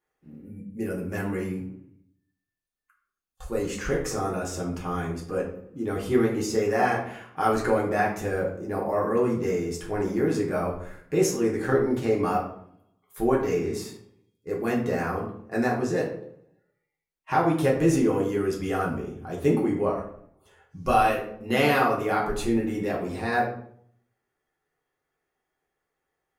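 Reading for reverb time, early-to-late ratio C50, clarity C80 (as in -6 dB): 0.60 s, 6.5 dB, 9.5 dB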